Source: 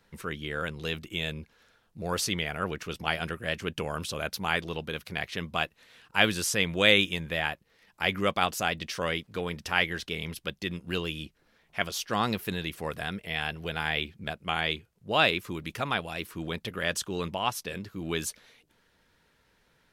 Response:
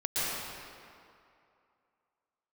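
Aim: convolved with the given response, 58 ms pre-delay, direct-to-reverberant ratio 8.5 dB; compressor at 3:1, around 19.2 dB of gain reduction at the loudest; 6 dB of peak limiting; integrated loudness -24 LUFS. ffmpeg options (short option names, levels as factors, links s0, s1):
-filter_complex "[0:a]acompressor=threshold=0.00708:ratio=3,alimiter=level_in=1.58:limit=0.0631:level=0:latency=1,volume=0.631,asplit=2[s0][s1];[1:a]atrim=start_sample=2205,adelay=58[s2];[s1][s2]afir=irnorm=-1:irlink=0,volume=0.126[s3];[s0][s3]amix=inputs=2:normalize=0,volume=9.44"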